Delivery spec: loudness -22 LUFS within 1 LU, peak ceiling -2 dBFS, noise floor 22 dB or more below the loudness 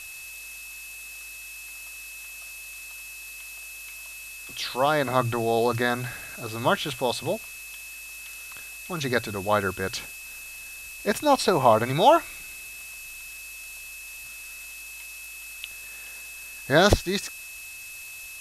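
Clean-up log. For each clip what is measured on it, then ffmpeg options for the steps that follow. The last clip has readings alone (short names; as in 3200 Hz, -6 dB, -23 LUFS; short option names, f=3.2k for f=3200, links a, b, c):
steady tone 2600 Hz; tone level -40 dBFS; noise floor -41 dBFS; noise floor target -50 dBFS; loudness -28.0 LUFS; peak -3.0 dBFS; loudness target -22.0 LUFS
-> -af "bandreject=f=2.6k:w=30"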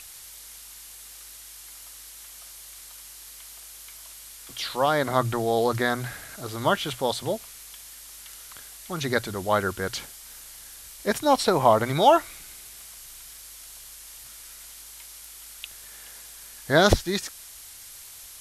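steady tone none; noise floor -45 dBFS; noise floor target -47 dBFS
-> -af "afftdn=nr=6:nf=-45"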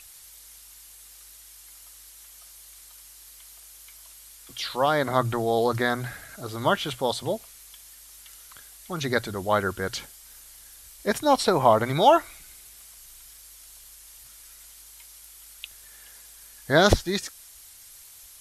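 noise floor -49 dBFS; loudness -24.0 LUFS; peak -3.0 dBFS; loudness target -22.0 LUFS
-> -af "volume=2dB,alimiter=limit=-2dB:level=0:latency=1"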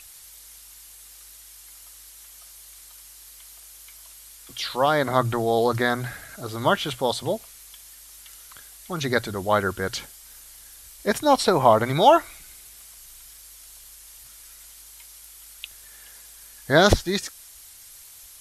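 loudness -22.5 LUFS; peak -2.0 dBFS; noise floor -47 dBFS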